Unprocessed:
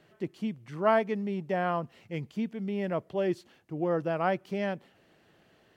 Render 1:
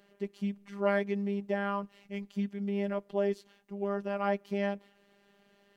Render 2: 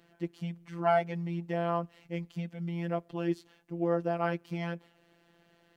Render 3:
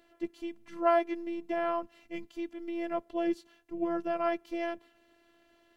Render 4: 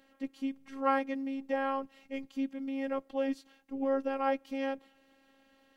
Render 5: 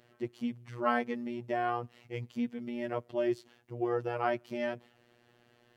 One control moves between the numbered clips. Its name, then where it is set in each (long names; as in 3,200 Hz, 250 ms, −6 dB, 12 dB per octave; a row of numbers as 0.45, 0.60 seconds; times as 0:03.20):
phases set to zero, frequency: 200, 170, 340, 270, 120 Hertz